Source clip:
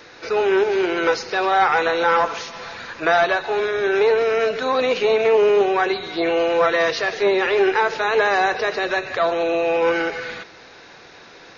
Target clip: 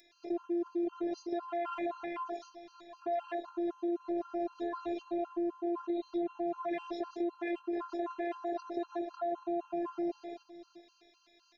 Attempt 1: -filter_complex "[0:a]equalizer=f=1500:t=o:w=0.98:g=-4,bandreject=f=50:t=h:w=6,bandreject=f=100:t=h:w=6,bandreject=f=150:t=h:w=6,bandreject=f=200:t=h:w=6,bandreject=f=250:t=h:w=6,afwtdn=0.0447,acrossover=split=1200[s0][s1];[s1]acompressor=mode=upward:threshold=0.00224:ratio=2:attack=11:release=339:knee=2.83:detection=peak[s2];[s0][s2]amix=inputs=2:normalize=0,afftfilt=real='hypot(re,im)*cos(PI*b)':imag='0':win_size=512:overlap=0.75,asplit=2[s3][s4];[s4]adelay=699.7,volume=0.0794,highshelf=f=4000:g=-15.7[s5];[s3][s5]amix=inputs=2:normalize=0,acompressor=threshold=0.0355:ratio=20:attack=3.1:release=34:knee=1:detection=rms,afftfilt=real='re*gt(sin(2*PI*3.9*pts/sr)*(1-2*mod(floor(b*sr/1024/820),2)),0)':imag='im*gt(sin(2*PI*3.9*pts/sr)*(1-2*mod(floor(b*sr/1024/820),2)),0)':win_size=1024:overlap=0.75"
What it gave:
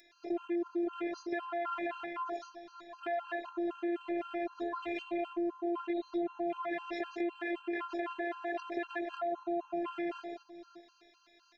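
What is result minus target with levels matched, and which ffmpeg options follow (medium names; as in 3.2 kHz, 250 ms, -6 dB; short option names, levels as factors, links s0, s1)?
2 kHz band +8.0 dB
-filter_complex "[0:a]equalizer=f=1500:t=o:w=0.98:g=-12,bandreject=f=50:t=h:w=6,bandreject=f=100:t=h:w=6,bandreject=f=150:t=h:w=6,bandreject=f=200:t=h:w=6,bandreject=f=250:t=h:w=6,afwtdn=0.0447,acrossover=split=1200[s0][s1];[s1]acompressor=mode=upward:threshold=0.00224:ratio=2:attack=11:release=339:knee=2.83:detection=peak[s2];[s0][s2]amix=inputs=2:normalize=0,afftfilt=real='hypot(re,im)*cos(PI*b)':imag='0':win_size=512:overlap=0.75,asplit=2[s3][s4];[s4]adelay=699.7,volume=0.0794,highshelf=f=4000:g=-15.7[s5];[s3][s5]amix=inputs=2:normalize=0,acompressor=threshold=0.0355:ratio=20:attack=3.1:release=34:knee=1:detection=rms,afftfilt=real='re*gt(sin(2*PI*3.9*pts/sr)*(1-2*mod(floor(b*sr/1024/820),2)),0)':imag='im*gt(sin(2*PI*3.9*pts/sr)*(1-2*mod(floor(b*sr/1024/820),2)),0)':win_size=1024:overlap=0.75"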